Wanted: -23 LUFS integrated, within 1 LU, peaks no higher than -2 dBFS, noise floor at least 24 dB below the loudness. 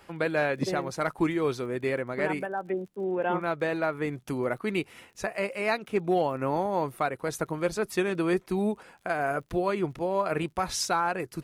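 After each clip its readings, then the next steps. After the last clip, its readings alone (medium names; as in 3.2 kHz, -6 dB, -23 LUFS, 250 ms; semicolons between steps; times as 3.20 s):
tick rate 43 per s; loudness -29.0 LUFS; peak level -15.0 dBFS; loudness target -23.0 LUFS
-> de-click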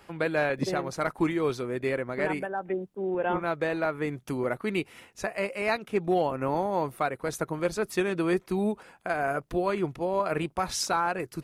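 tick rate 0.44 per s; loudness -29.5 LUFS; peak level -14.0 dBFS; loudness target -23.0 LUFS
-> trim +6.5 dB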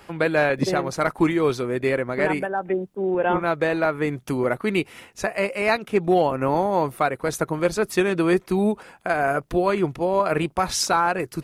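loudness -23.0 LUFS; peak level -7.5 dBFS; noise floor -54 dBFS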